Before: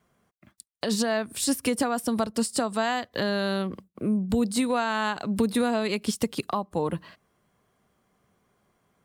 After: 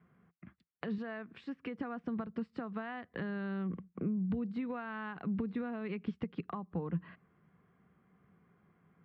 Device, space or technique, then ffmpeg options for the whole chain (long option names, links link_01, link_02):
bass amplifier: -filter_complex "[0:a]acompressor=threshold=-37dB:ratio=4,highpass=66,equalizer=frequency=72:width_type=q:width=4:gain=4,equalizer=frequency=170:width_type=q:width=4:gain=10,equalizer=frequency=600:width_type=q:width=4:gain=-9,equalizer=frequency=900:width_type=q:width=4:gain=-5,lowpass=frequency=2300:width=0.5412,lowpass=frequency=2300:width=1.3066,asettb=1/sr,asplit=3[link_01][link_02][link_03];[link_01]atrim=end=0.984[link_04];[link_02]atrim=start=0.98:end=1.78,asetpts=PTS-STARTPTS,afade=type=in:duration=0.004:curve=qsin,afade=type=out:start_time=0.796:duration=0.004:curve=qsin,highpass=frequency=270:poles=1[link_05];[link_03]atrim=start=1.776[link_06];[link_04][link_05]acrossfade=duration=0.004:curve1=hsin:curve2=qsin[link_07];[link_07][link_06]acrossfade=duration=0.004:curve1=qsin:curve2=hsin"